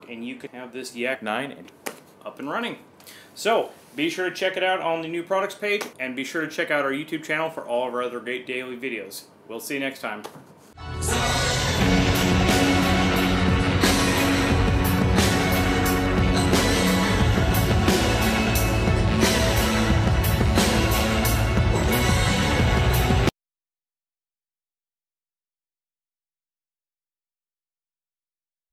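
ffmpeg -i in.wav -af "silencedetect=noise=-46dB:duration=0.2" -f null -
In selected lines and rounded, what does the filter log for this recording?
silence_start: 23.30
silence_end: 28.73 | silence_duration: 5.43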